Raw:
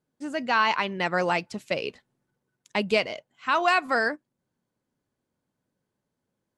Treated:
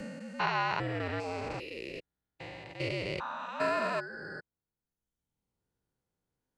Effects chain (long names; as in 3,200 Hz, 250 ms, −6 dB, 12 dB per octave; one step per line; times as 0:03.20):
spectrum averaged block by block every 400 ms
frequency shifter −74 Hz
reverb reduction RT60 1.2 s